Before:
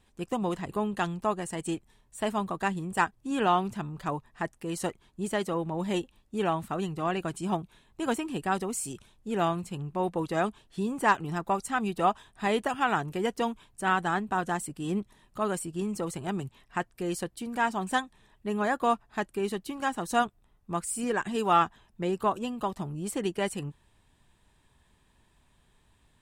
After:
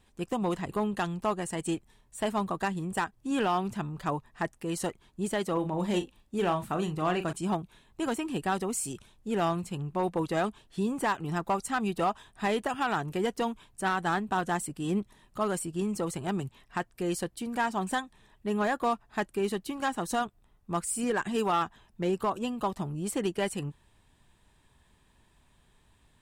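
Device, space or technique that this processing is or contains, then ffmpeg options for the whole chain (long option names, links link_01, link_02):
limiter into clipper: -filter_complex "[0:a]alimiter=limit=-18dB:level=0:latency=1:release=157,asoftclip=type=hard:threshold=-21.5dB,asettb=1/sr,asplit=3[link_01][link_02][link_03];[link_01]atrim=end=5.534[link_04];[link_02]atrim=start=5.53:end=7.33,asetpts=PTS-STARTPTS,afade=type=in:duration=0.004:curve=qsin,afade=type=out:start_time=1.796:duration=0.004:curve=qsin,asplit=2[link_05][link_06];[link_06]adelay=39,volume=-9.5dB[link_07];[link_05][link_07]amix=inputs=2:normalize=0,atrim=end_sample=79380[link_08];[link_03]atrim=start=7.326[link_09];[link_04][link_08]acrossfade=duration=0.004:curve1=hsin:curve2=qsin[link_10];[link_10][link_09]acrossfade=duration=0.004:curve1=qsin:curve2=hsin,volume=1dB"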